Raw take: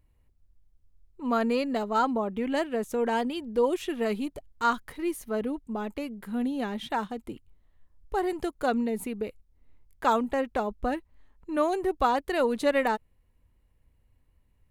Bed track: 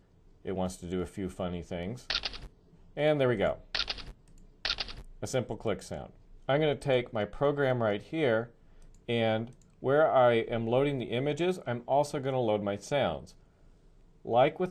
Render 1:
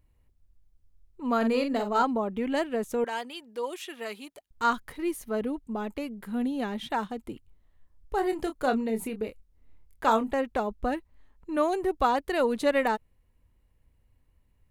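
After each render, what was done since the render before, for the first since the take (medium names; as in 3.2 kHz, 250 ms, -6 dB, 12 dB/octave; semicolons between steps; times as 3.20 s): 1.37–2.03 s: doubling 44 ms -7 dB; 3.04–4.51 s: high-pass 1.3 kHz 6 dB/octave; 8.15–10.34 s: doubling 27 ms -8.5 dB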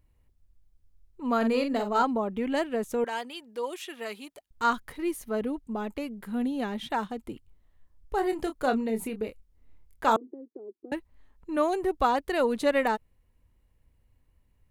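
10.16–10.92 s: Butterworth band-pass 350 Hz, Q 3.7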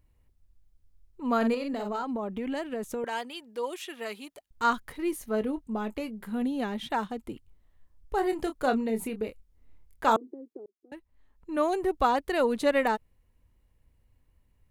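1.54–3.04 s: compression 12:1, threshold -28 dBFS; 5.10–6.42 s: doubling 23 ms -12 dB; 10.66–11.73 s: fade in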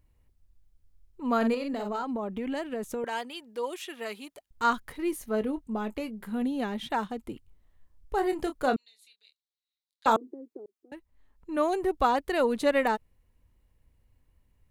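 8.76–10.06 s: ladder band-pass 4.2 kHz, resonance 75%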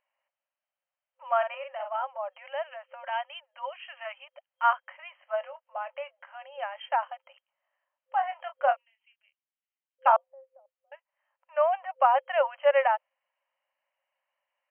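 FFT band-pass 520–3200 Hz; dynamic bell 720 Hz, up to +5 dB, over -37 dBFS, Q 1.4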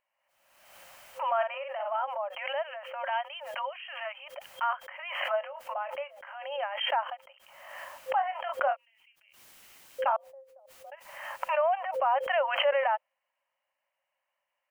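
peak limiter -18.5 dBFS, peak gain reduction 9 dB; swell ahead of each attack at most 48 dB/s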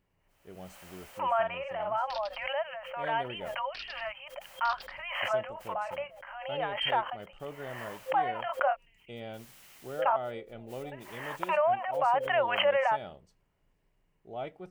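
add bed track -14 dB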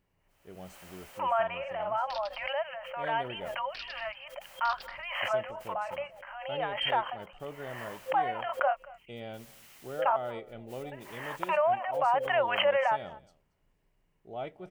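delay 229 ms -22 dB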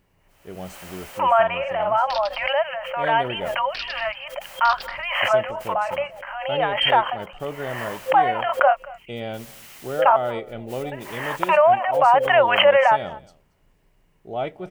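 trim +11 dB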